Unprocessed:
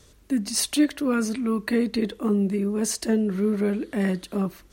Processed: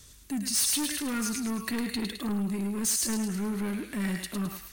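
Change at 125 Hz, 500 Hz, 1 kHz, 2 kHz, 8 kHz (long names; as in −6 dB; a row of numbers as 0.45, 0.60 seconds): −5.5, −13.5, −4.0, −3.0, +2.5 decibels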